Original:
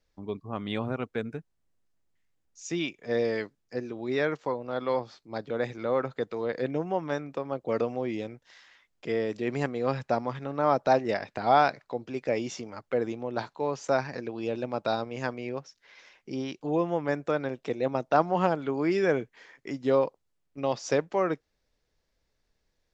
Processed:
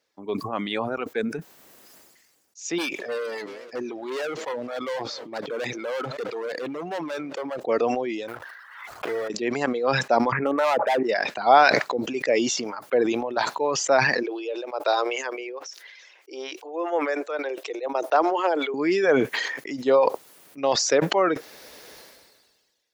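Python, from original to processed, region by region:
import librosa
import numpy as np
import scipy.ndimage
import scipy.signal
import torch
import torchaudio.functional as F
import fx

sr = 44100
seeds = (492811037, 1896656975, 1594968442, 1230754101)

y = fx.chain(x, sr, fx.clip_hard(threshold_db=-31.5),
    fx.echo_warbled(ms=223, feedback_pct=66, rate_hz=2.8, cents=217, wet_db=-21.5), at=(2.78, 7.6))
y = fx.chain(y, sr, fx.block_float(bits=3),
    fx.curve_eq(hz=(110.0, 180.0, 1400.0, 2100.0, 8000.0), db=(0, -13, 5, -7, -20)),
    fx.pre_swell(db_per_s=47.0), at=(8.28, 9.3))
y = fx.chain(y, sr, fx.steep_lowpass(hz=2400.0, slope=72),
    fx.clip_hard(threshold_db=-24.5),
    fx.env_flatten(amount_pct=100), at=(10.32, 11.03))
y = fx.chain(y, sr, fx.steep_highpass(hz=320.0, slope=48),
    fx.tremolo_shape(shape='triangle', hz=1.9, depth_pct=75), at=(14.23, 18.74))
y = fx.dereverb_blind(y, sr, rt60_s=2.0)
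y = scipy.signal.sosfilt(scipy.signal.butter(2, 320.0, 'highpass', fs=sr, output='sos'), y)
y = fx.sustainer(y, sr, db_per_s=36.0)
y = y * librosa.db_to_amplitude(6.5)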